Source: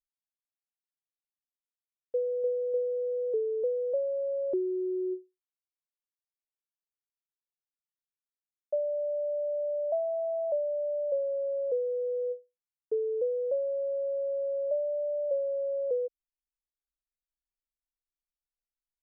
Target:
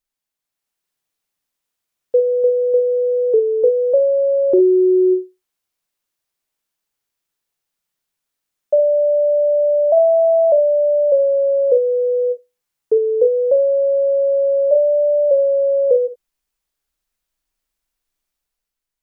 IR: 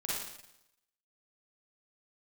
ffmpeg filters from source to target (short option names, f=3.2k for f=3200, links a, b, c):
-filter_complex "[0:a]dynaudnorm=f=110:g=11:m=5.5dB,asplit=2[a][b];[1:a]atrim=start_sample=2205,atrim=end_sample=3528[c];[b][c]afir=irnorm=-1:irlink=0,volume=-6dB[d];[a][d]amix=inputs=2:normalize=0,volume=7.5dB"